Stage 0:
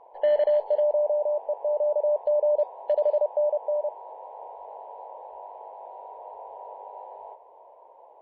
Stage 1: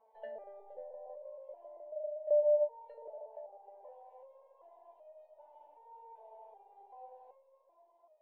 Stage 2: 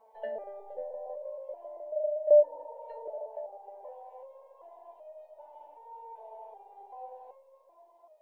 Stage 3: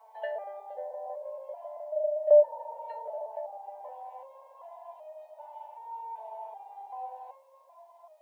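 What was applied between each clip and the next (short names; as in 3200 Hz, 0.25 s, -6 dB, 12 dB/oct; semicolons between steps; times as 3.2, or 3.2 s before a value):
Schroeder reverb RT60 2.2 s, combs from 26 ms, DRR 12.5 dB; treble ducked by the level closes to 790 Hz, closed at -20 dBFS; stepped resonator 2.6 Hz 220–620 Hz
spectral repair 2.45–3, 480–1200 Hz after; dynamic EQ 310 Hz, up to +6 dB, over -53 dBFS, Q 1.3; gain +7.5 dB
HPF 690 Hz 24 dB/oct; gain +7.5 dB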